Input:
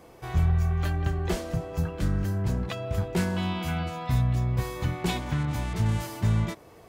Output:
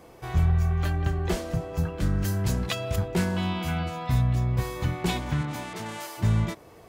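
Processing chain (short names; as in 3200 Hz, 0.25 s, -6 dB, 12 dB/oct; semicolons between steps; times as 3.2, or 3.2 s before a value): 2.22–2.96 high shelf 2500 Hz +11.5 dB; 5.41–6.17 HPF 160 Hz -> 590 Hz 12 dB/oct; gain +1 dB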